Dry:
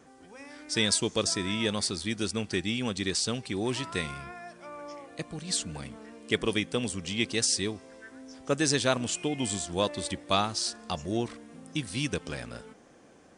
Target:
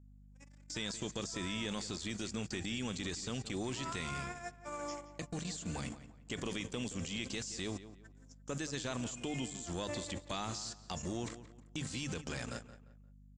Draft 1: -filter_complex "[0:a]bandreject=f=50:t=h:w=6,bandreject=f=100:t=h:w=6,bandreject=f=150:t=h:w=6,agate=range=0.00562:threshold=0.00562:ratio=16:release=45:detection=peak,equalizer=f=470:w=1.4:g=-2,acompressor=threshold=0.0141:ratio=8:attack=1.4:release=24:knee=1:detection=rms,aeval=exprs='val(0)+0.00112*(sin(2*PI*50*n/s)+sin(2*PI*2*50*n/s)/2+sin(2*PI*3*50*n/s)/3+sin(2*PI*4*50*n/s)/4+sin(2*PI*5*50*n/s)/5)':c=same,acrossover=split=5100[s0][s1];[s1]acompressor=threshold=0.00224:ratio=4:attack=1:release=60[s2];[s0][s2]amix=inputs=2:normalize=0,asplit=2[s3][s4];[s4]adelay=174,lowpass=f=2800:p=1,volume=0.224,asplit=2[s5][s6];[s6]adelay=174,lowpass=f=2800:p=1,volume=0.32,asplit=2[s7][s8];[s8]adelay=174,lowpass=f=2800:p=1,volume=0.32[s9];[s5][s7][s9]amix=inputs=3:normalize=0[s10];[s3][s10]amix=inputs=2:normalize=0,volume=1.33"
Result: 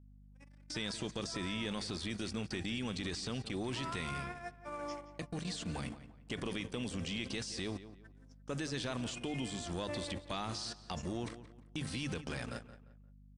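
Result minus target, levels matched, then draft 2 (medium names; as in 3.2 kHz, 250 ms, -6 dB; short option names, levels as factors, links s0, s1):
8 kHz band -4.5 dB
-filter_complex "[0:a]bandreject=f=50:t=h:w=6,bandreject=f=100:t=h:w=6,bandreject=f=150:t=h:w=6,agate=range=0.00562:threshold=0.00562:ratio=16:release=45:detection=peak,lowpass=f=7200:t=q:w=8.9,equalizer=f=470:w=1.4:g=-2,acompressor=threshold=0.0141:ratio=8:attack=1.4:release=24:knee=1:detection=rms,aeval=exprs='val(0)+0.00112*(sin(2*PI*50*n/s)+sin(2*PI*2*50*n/s)/2+sin(2*PI*3*50*n/s)/3+sin(2*PI*4*50*n/s)/4+sin(2*PI*5*50*n/s)/5)':c=same,acrossover=split=5100[s0][s1];[s1]acompressor=threshold=0.00224:ratio=4:attack=1:release=60[s2];[s0][s2]amix=inputs=2:normalize=0,asplit=2[s3][s4];[s4]adelay=174,lowpass=f=2800:p=1,volume=0.224,asplit=2[s5][s6];[s6]adelay=174,lowpass=f=2800:p=1,volume=0.32,asplit=2[s7][s8];[s8]adelay=174,lowpass=f=2800:p=1,volume=0.32[s9];[s5][s7][s9]amix=inputs=3:normalize=0[s10];[s3][s10]amix=inputs=2:normalize=0,volume=1.33"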